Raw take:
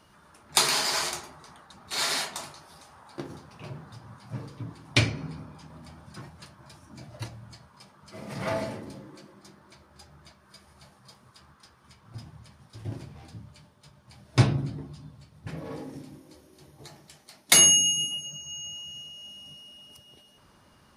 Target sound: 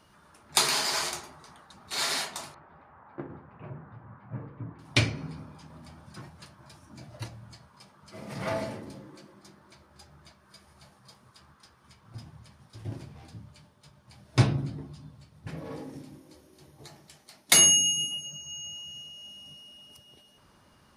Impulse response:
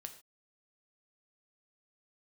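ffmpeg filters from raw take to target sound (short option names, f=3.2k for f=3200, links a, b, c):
-filter_complex "[0:a]asettb=1/sr,asplit=3[a][b][c];[a]atrim=end=2.544[d];[b]atrim=start=2.54:end=4.79,asetpts=PTS-STARTPTS,afade=t=in:d=0.004:c=qsin,afade=t=out:st=2.246:d=0.004:c=qsin,lowpass=f=2k:w=0.5412,lowpass=f=2k:w=1.3066[e];[c]atrim=start=4.786[f];[d][e]acrossfade=d=0.004:c1=hsin:c2=qsin[g];[g][f]acrossfade=d=0.004:c1=qsin:c2=hsin,volume=-1.5dB"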